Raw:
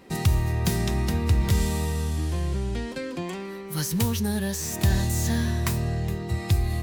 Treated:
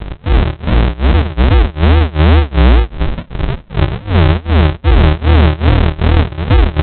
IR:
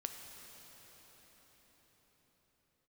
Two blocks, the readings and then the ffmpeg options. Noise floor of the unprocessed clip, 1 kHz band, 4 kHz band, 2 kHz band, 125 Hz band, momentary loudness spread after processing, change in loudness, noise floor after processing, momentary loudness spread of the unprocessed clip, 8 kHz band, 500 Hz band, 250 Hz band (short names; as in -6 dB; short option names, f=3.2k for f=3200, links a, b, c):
-36 dBFS, +16.5 dB, +11.5 dB, +14.5 dB, +14.0 dB, 8 LU, +14.0 dB, -35 dBFS, 8 LU, under -40 dB, +14.5 dB, +11.5 dB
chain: -filter_complex "[0:a]areverse,acompressor=threshold=-31dB:ratio=6,areverse,asubboost=boost=10:cutoff=77,aeval=exprs='val(0)+0.00631*(sin(2*PI*50*n/s)+sin(2*PI*2*50*n/s)/2+sin(2*PI*3*50*n/s)/3+sin(2*PI*4*50*n/s)/4+sin(2*PI*5*50*n/s)/5)':c=same[a];[1:a]atrim=start_sample=2205,atrim=end_sample=3087[b];[a][b]afir=irnorm=-1:irlink=0,aresample=8000,acrusher=samples=27:mix=1:aa=0.000001:lfo=1:lforange=16.2:lforate=2.4,aresample=44100,tremolo=f=2.6:d=0.97,alimiter=level_in=27.5dB:limit=-1dB:release=50:level=0:latency=1,volume=-1dB"